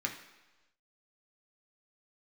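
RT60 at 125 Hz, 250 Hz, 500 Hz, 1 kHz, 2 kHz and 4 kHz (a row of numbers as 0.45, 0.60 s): 1.0, 1.0, 1.1, 1.1, 1.1, 1.2 s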